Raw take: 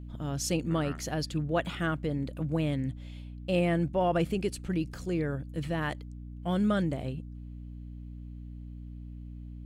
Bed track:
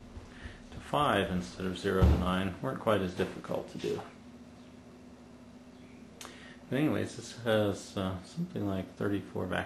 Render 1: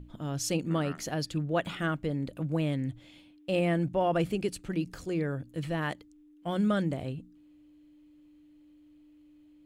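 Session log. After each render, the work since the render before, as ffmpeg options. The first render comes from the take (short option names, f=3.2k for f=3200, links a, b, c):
-af "bandreject=f=60:t=h:w=6,bandreject=f=120:t=h:w=6,bandreject=f=180:t=h:w=6,bandreject=f=240:t=h:w=6"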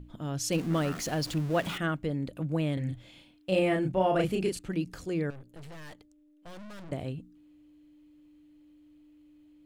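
-filter_complex "[0:a]asettb=1/sr,asplit=3[a][b][c];[a]atrim=end=0.524[d];[b]atrim=start=0.52:end=1.78,asetpts=PTS-STARTPTS,afade=t=in:d=0.004:c=qsin,afade=t=out:st=1.256:d=0.004:c=qsin,aeval=exprs='val(0)+0.5*0.0141*sgn(val(0))':c=same[e];[c]atrim=start=1.776[f];[d][e]acrossfade=d=0.004:c1=hsin:c2=qsin[g];[g][f]acrossfade=d=0.004:c1=qsin:c2=hsin,asettb=1/sr,asplit=3[h][i][j];[h]atrim=end=2.744[k];[i]atrim=start=2.74:end=4.59,asetpts=PTS-STARTPTS,afade=t=in:d=0.004:c=qsin,afade=t=out:st=1.846:d=0.004:c=qsin,asplit=2[l][m];[m]adelay=32,volume=-2.5dB[n];[l][n]amix=inputs=2:normalize=0,atrim=end_sample=81585[o];[j]atrim=start=4.586[p];[k][o]acrossfade=d=0.004:c1=hsin:c2=qsin[q];[q][p]acrossfade=d=0.004:c1=qsin:c2=hsin,asettb=1/sr,asplit=3[r][s][t];[r]atrim=end=5.304[u];[s]atrim=start=5.3:end=6.92,asetpts=PTS-STARTPTS,afade=t=in:d=0.004:c=qsin,afade=t=out:st=1.616:d=0.004:c=qsin,aeval=exprs='(tanh(178*val(0)+0.75)-tanh(0.75))/178':c=same[v];[t]atrim=start=6.916[w];[u][v]acrossfade=d=0.004:c1=hsin:c2=qsin[x];[x][w]acrossfade=d=0.004:c1=qsin:c2=hsin"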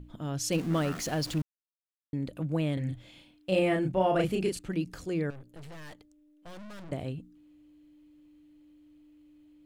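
-filter_complex "[0:a]asplit=3[a][b][c];[a]atrim=end=1.42,asetpts=PTS-STARTPTS,afade=t=out:st=1.416:d=0.004:c=hsin[d];[b]atrim=start=1.42:end=2.13,asetpts=PTS-STARTPTS,volume=0[e];[c]atrim=start=2.13,asetpts=PTS-STARTPTS,afade=t=in:d=0.004:c=hsin[f];[d][e][f]concat=n=3:v=0:a=1"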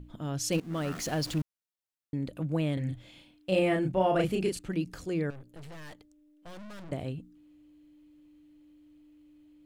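-filter_complex "[0:a]asplit=2[a][b];[a]atrim=end=0.6,asetpts=PTS-STARTPTS,afade=t=out:st=0.596:d=0.004:c=hsin:silence=0.158489[c];[b]atrim=start=0.6,asetpts=PTS-STARTPTS,afade=t=in:d=0.55:c=qsin:silence=0.158489[d];[c][d]concat=n=2:v=0:a=1"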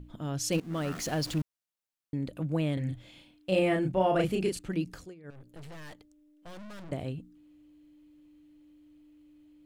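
-filter_complex "[0:a]asplit=3[a][b][c];[a]atrim=end=5.15,asetpts=PTS-STARTPTS,afade=t=out:st=4.91:d=0.24:silence=0.0707946[d];[b]atrim=start=5.15:end=5.23,asetpts=PTS-STARTPTS,volume=-23dB[e];[c]atrim=start=5.23,asetpts=PTS-STARTPTS,afade=t=in:d=0.24:silence=0.0707946[f];[d][e][f]concat=n=3:v=0:a=1"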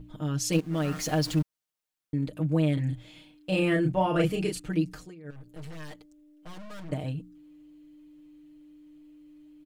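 -af "aecho=1:1:6.5:0.85"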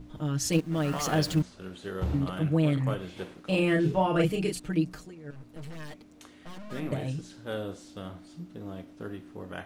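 -filter_complex "[1:a]volume=-6.5dB[a];[0:a][a]amix=inputs=2:normalize=0"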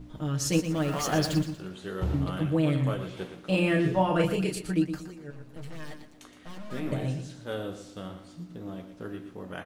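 -filter_complex "[0:a]asplit=2[a][b];[b]adelay=16,volume=-11dB[c];[a][c]amix=inputs=2:normalize=0,aecho=1:1:118|236|354|472:0.316|0.101|0.0324|0.0104"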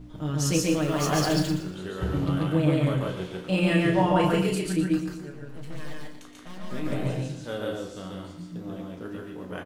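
-filter_complex "[0:a]asplit=2[a][b];[b]adelay=33,volume=-10.5dB[c];[a][c]amix=inputs=2:normalize=0,aecho=1:1:139.9|174.9:0.891|0.355"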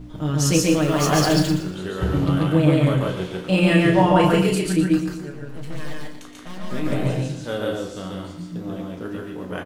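-af "volume=6dB"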